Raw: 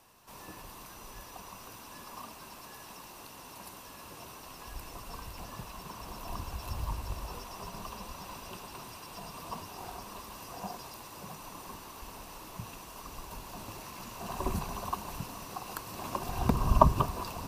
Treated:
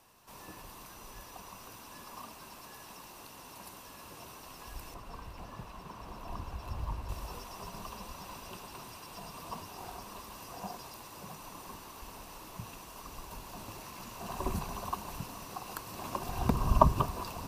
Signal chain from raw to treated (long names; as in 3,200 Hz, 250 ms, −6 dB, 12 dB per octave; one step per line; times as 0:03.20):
0:04.94–0:07.09: high-shelf EQ 4,200 Hz −11.5 dB
level −1.5 dB